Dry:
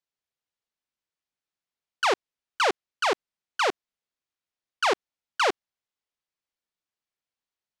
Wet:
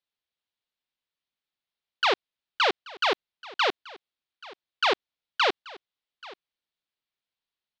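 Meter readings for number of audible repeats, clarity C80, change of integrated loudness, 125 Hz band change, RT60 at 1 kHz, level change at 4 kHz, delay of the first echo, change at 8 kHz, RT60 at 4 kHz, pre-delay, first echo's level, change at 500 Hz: 1, no reverb audible, +0.5 dB, can't be measured, no reverb audible, +4.0 dB, 832 ms, −8.5 dB, no reverb audible, no reverb audible, −20.5 dB, −1.5 dB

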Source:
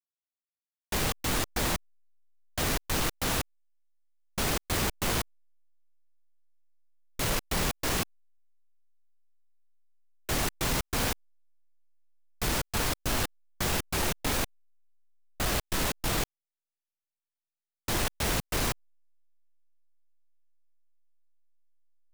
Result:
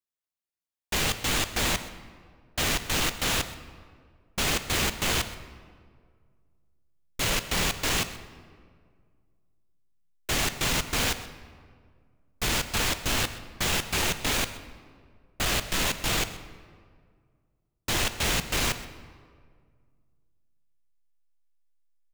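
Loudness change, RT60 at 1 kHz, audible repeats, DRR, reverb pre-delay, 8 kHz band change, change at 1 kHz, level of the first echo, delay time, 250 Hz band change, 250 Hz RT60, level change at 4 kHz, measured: +3.0 dB, 1.8 s, 1, 10.5 dB, 14 ms, +3.5 dB, +1.5 dB, −18.0 dB, 128 ms, +0.5 dB, 2.2 s, +6.0 dB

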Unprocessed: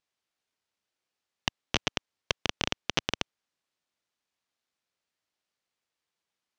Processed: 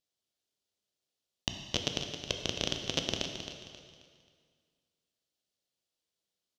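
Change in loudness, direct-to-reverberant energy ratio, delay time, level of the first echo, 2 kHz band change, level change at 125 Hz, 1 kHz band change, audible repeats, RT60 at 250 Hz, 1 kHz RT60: −2.0 dB, 3.5 dB, 267 ms, −10.0 dB, −7.0 dB, 0.0 dB, −8.0 dB, 3, 2.0 s, 2.0 s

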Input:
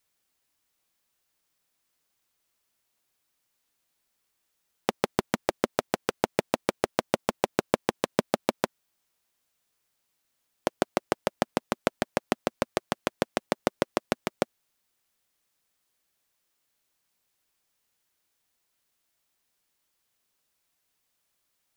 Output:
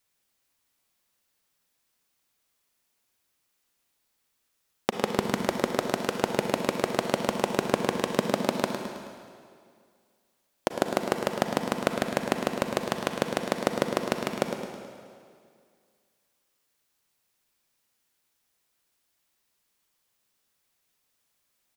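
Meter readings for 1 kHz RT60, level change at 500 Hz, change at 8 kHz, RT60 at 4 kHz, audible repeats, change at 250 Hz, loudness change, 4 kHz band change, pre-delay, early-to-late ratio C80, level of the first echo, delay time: 2.1 s, +1.5 dB, +1.5 dB, 1.9 s, 2, +2.5 dB, +1.5 dB, +2.0 dB, 32 ms, 4.0 dB, −9.0 dB, 107 ms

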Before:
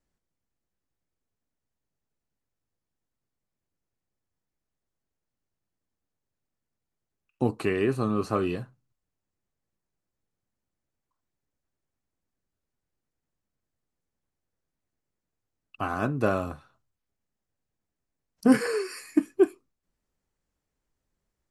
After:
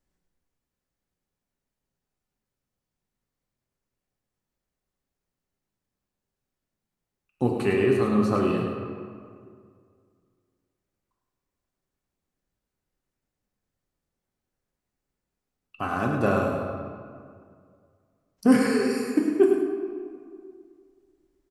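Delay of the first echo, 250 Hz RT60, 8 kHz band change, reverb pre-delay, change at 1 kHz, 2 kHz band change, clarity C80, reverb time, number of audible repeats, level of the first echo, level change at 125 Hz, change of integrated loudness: 104 ms, 2.3 s, can't be measured, 3 ms, +3.0 dB, +3.0 dB, 2.5 dB, 2.2 s, 1, −7.0 dB, +3.0 dB, +2.5 dB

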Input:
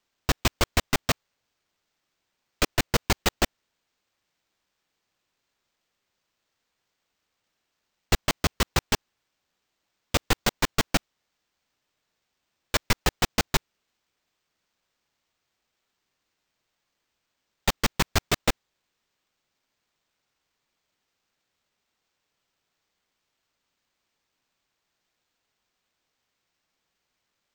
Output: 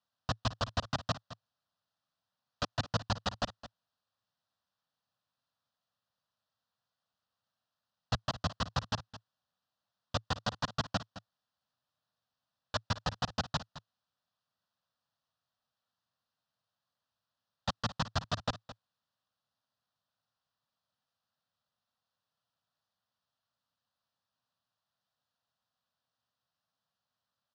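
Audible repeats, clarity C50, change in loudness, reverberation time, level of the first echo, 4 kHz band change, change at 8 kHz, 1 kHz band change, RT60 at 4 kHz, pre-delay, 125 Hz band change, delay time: 1, no reverb audible, −10.0 dB, no reverb audible, −15.0 dB, −9.5 dB, −17.0 dB, −6.5 dB, no reverb audible, no reverb audible, −6.0 dB, 215 ms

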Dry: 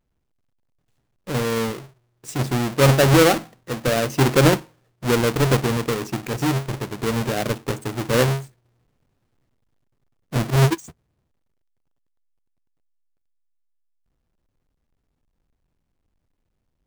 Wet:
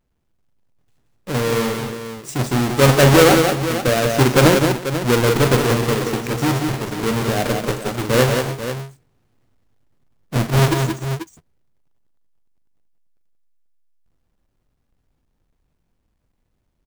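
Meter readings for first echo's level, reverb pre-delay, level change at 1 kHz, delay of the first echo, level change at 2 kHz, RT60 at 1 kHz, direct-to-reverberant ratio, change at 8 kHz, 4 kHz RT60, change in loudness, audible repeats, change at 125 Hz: −10.5 dB, no reverb audible, +4.5 dB, 41 ms, +4.5 dB, no reverb audible, no reverb audible, +4.5 dB, no reverb audible, +3.0 dB, 4, +2.5 dB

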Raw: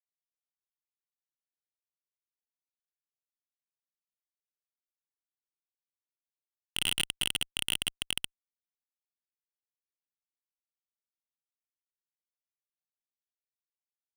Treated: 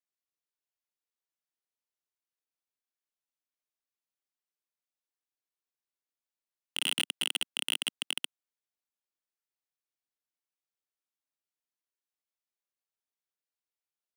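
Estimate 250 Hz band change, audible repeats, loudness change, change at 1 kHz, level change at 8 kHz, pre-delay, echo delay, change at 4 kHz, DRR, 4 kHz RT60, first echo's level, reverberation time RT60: −3.0 dB, no echo audible, −0.5 dB, 0.0 dB, −2.0 dB, no reverb audible, no echo audible, −0.5 dB, no reverb audible, no reverb audible, no echo audible, no reverb audible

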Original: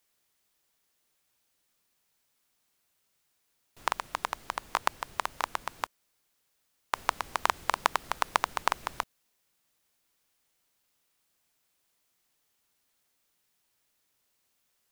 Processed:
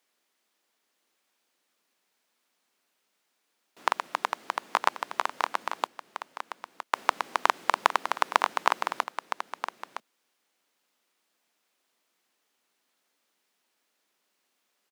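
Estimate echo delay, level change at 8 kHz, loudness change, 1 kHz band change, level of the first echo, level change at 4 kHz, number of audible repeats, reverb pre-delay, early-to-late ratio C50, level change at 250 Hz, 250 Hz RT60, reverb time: 964 ms, −1.5 dB, +3.0 dB, +4.0 dB, −9.5 dB, +2.0 dB, 1, no reverb audible, no reverb audible, +3.5 dB, no reverb audible, no reverb audible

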